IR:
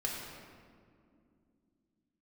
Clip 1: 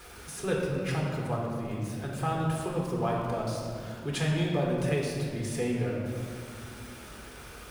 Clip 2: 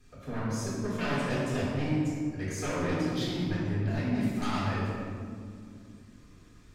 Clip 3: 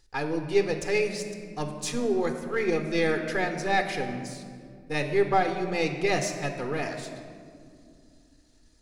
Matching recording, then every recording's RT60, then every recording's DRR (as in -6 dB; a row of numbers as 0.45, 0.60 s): 1; 2.4, 2.4, 2.3 s; -3.0, -10.0, 5.5 dB